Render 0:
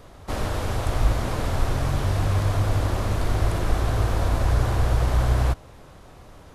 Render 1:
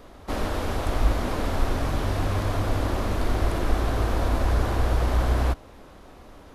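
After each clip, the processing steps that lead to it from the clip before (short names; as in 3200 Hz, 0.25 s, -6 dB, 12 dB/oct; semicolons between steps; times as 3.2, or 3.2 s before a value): ten-band EQ 125 Hz -9 dB, 250 Hz +5 dB, 8000 Hz -4 dB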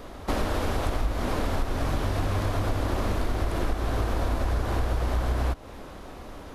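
compressor, threshold -28 dBFS, peak gain reduction 13.5 dB; gain +5.5 dB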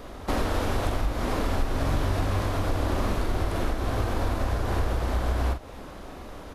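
doubler 44 ms -7.5 dB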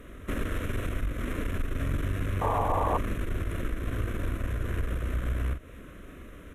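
tube stage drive 20 dB, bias 0.55; fixed phaser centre 2000 Hz, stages 4; painted sound noise, 2.41–2.98, 420–1200 Hz -28 dBFS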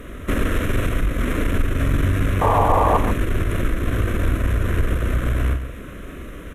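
in parallel at -11.5 dB: hard clip -25 dBFS, distortion -14 dB; on the sum: echo 0.139 s -10.5 dB; gain +8.5 dB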